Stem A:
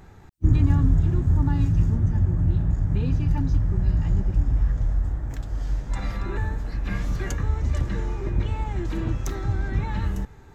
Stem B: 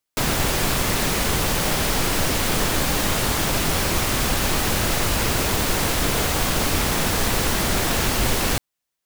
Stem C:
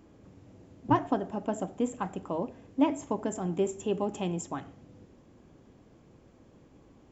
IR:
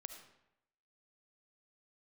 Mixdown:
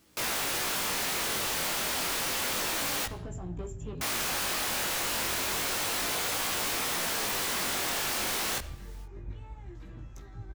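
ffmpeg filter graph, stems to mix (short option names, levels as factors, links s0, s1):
-filter_complex "[0:a]adelay=900,volume=0.168[s0];[1:a]dynaudnorm=f=120:g=3:m=2.37,asplit=2[s1][s2];[s2]highpass=f=720:p=1,volume=56.2,asoftclip=type=tanh:threshold=0.794[s3];[s1][s3]amix=inputs=2:normalize=0,lowpass=f=6900:p=1,volume=0.501,volume=0.422,asplit=3[s4][s5][s6];[s4]atrim=end=3.06,asetpts=PTS-STARTPTS,afade=t=out:st=3.056:d=0.004:c=hsin[s7];[s5]atrim=start=3.06:end=4.01,asetpts=PTS-STARTPTS,volume=0[s8];[s6]atrim=start=4.01,asetpts=PTS-STARTPTS,afade=t=in:d=0.004:c=hsin[s9];[s7][s8][s9]concat=n=3:v=0:a=1,asplit=2[s10][s11];[s11]volume=0.15[s12];[2:a]asoftclip=type=tanh:threshold=0.0596,volume=0.501[s13];[3:a]atrim=start_sample=2205[s14];[s12][s14]afir=irnorm=-1:irlink=0[s15];[s0][s10][s13][s15]amix=inputs=4:normalize=0,volume=23.7,asoftclip=hard,volume=0.0422,flanger=delay=16.5:depth=7.6:speed=0.3"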